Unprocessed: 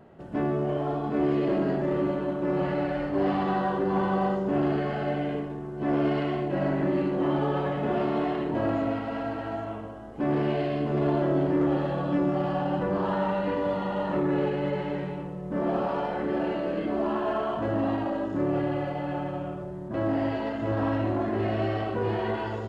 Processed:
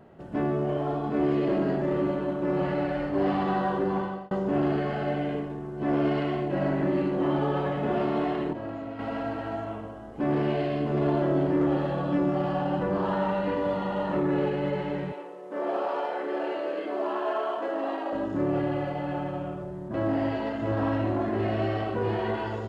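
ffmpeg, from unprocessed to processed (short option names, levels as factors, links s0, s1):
-filter_complex "[0:a]asettb=1/sr,asplit=3[s0][s1][s2];[s0]atrim=end=15.124[s3];[s1]atrim=start=15.12:end=18.13,asetpts=PTS-STARTPTS,afade=t=in:d=0.004:c=qsin,afade=t=out:st=3.006:d=0.004:c=qsin,highpass=f=350:w=0.5412,highpass=f=350:w=1.3066[s4];[s2]atrim=start=18.126[s5];[s3][s4]acrossfade=d=0.004:c1=hsin:c2=qsin[s6];[s6][s5]acrossfade=d=0.004:c1=qsin:c2=hsin,asplit=4[s7][s8][s9][s10];[s7]atrim=end=4.31,asetpts=PTS-STARTPTS,afade=t=out:st=3.85:d=0.46[s11];[s8]atrim=start=4.31:end=8.532,asetpts=PTS-STARTPTS,afade=t=in:d=0.004:c=hsin[s12];[s9]atrim=start=8.528:end=8.992,asetpts=PTS-STARTPTS,volume=0.355[s13];[s10]atrim=start=8.988[s14];[s11][s12]concat=n=2:v=0:a=1[s15];[s15][s13]acrossfade=d=0.004:c1=hsin:c2=hsin[s16];[s16][s14]acrossfade=d=0.004:c1=hsin:c2=hsin"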